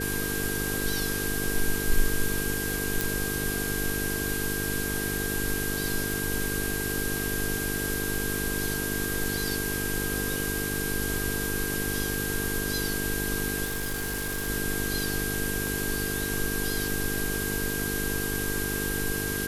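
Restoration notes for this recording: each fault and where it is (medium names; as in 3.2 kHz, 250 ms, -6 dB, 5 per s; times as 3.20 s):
buzz 50 Hz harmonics 9 -33 dBFS
whine 1.6 kHz -34 dBFS
3.01 s: pop
13.64–14.49 s: clipped -27 dBFS
15.67 s: pop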